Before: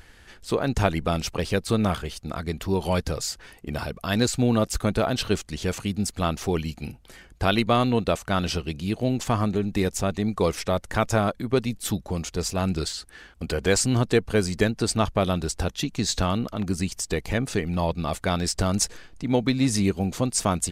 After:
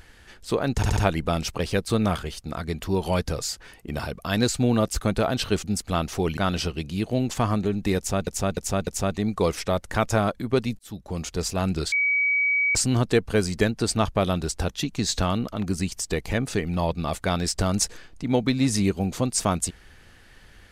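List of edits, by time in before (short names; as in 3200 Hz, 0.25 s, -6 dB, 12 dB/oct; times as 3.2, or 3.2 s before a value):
0.76 stutter 0.07 s, 4 plays
5.43–5.93 cut
6.66–8.27 cut
9.87–10.17 loop, 4 plays
11.79–12.25 fade in
12.92–13.75 bleep 2270 Hz -19 dBFS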